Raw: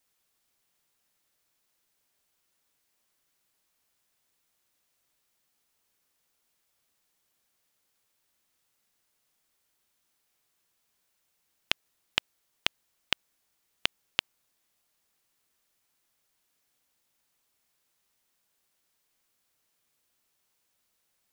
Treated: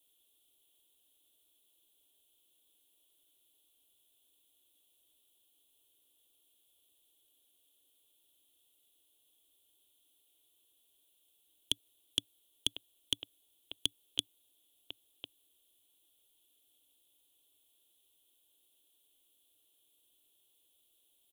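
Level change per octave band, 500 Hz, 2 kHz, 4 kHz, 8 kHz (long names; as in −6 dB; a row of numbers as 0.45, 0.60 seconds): −9.0, −18.5, −3.0, +3.0 decibels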